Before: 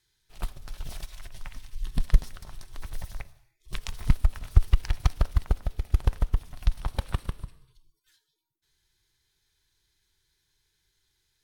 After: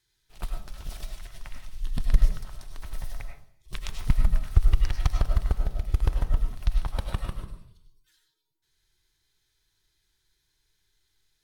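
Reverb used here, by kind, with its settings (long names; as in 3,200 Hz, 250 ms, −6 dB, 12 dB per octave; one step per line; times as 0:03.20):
comb and all-pass reverb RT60 0.47 s, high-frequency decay 0.35×, pre-delay 60 ms, DRR 3.5 dB
level −1.5 dB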